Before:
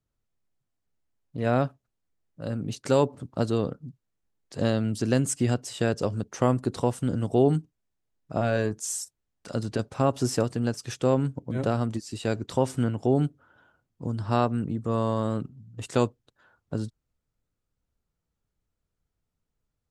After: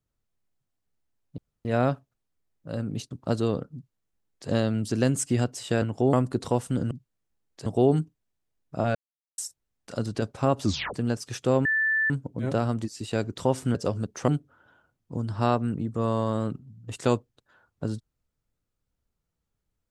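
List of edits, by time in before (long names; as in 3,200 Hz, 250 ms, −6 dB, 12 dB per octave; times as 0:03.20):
0:01.38: splice in room tone 0.27 s
0:02.84–0:03.21: remove
0:03.84–0:04.59: duplicate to 0:07.23
0:05.92–0:06.45: swap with 0:12.87–0:13.18
0:08.52–0:08.95: silence
0:10.20: tape stop 0.31 s
0:11.22: insert tone 1,760 Hz −21 dBFS 0.45 s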